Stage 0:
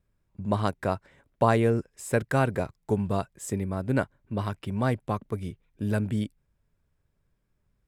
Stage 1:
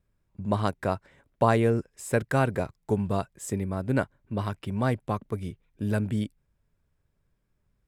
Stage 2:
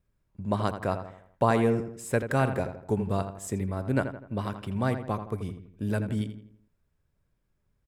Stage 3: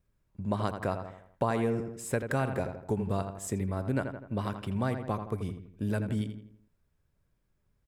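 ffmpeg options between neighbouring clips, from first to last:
-af anull
-filter_complex "[0:a]asplit=2[a][b];[b]adelay=83,lowpass=f=2.5k:p=1,volume=-9dB,asplit=2[c][d];[d]adelay=83,lowpass=f=2.5k:p=1,volume=0.46,asplit=2[e][f];[f]adelay=83,lowpass=f=2.5k:p=1,volume=0.46,asplit=2[g][h];[h]adelay=83,lowpass=f=2.5k:p=1,volume=0.46,asplit=2[i][j];[j]adelay=83,lowpass=f=2.5k:p=1,volume=0.46[k];[a][c][e][g][i][k]amix=inputs=6:normalize=0,volume=-1.5dB"
-af "acompressor=threshold=-27dB:ratio=2.5"

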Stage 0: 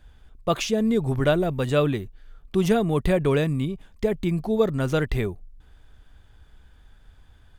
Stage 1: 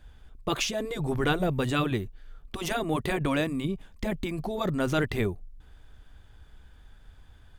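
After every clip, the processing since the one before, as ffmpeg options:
-af "afftfilt=real='re*lt(hypot(re,im),0.562)':imag='im*lt(hypot(re,im),0.562)':win_size=1024:overlap=0.75"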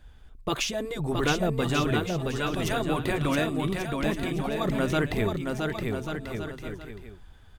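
-af "aecho=1:1:670|1139|1467|1697|1858:0.631|0.398|0.251|0.158|0.1"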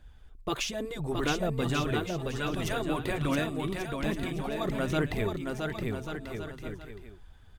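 -af "aphaser=in_gain=1:out_gain=1:delay=3.4:decay=0.24:speed=1.2:type=triangular,volume=-4dB"

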